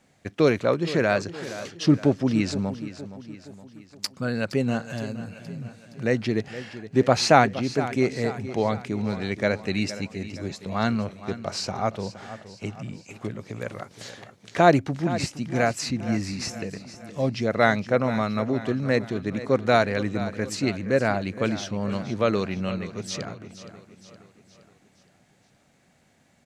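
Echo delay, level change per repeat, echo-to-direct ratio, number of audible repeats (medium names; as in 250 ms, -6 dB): 468 ms, -6.0 dB, -12.5 dB, 4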